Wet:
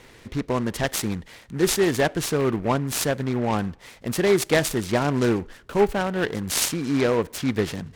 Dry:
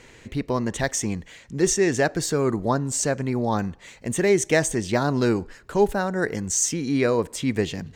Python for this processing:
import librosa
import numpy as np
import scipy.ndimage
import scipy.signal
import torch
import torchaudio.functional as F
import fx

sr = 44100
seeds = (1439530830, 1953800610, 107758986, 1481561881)

y = fx.noise_mod_delay(x, sr, seeds[0], noise_hz=1300.0, depth_ms=0.049)